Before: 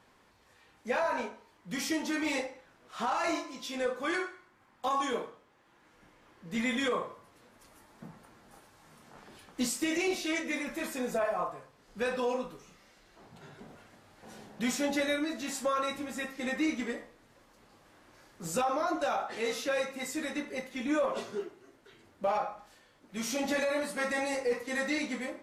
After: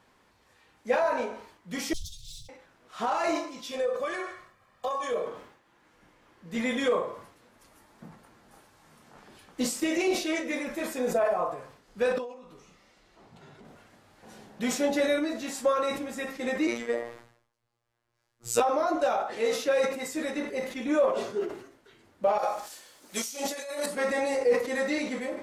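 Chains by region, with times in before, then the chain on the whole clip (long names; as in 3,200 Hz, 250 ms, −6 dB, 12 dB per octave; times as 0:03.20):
0:01.93–0:02.49: lower of the sound and its delayed copy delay 5.4 ms + Chebyshev band-stop filter 140–3,500 Hz, order 5 + tilt shelving filter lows +4 dB, about 730 Hz
0:03.71–0:05.26: comb filter 1.7 ms + downward compressor 5 to 1, threshold −31 dBFS
0:12.18–0:13.65: downward compressor, threshold −46 dBFS + high-shelf EQ 12,000 Hz −12 dB + notch filter 1,600 Hz, Q 13
0:16.67–0:18.60: parametric band 230 Hz −8 dB 0.53 octaves + phases set to zero 118 Hz + multiband upward and downward expander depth 100%
0:22.38–0:23.86: bass and treble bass −11 dB, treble +15 dB + compressor whose output falls as the input rises −35 dBFS, ratio −0.5
whole clip: dynamic equaliser 510 Hz, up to +7 dB, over −45 dBFS, Q 1.1; level that may fall only so fast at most 92 dB per second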